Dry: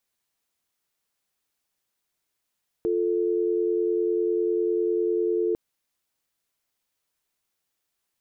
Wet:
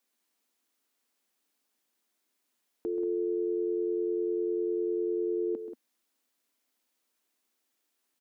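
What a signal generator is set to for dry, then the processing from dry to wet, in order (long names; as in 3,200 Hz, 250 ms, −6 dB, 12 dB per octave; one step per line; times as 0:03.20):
call progress tone dial tone, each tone −24 dBFS 2.70 s
low shelf with overshoot 180 Hz −10.5 dB, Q 3
brickwall limiter −26 dBFS
on a send: loudspeakers that aren't time-aligned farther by 45 metres −11 dB, 63 metres −10 dB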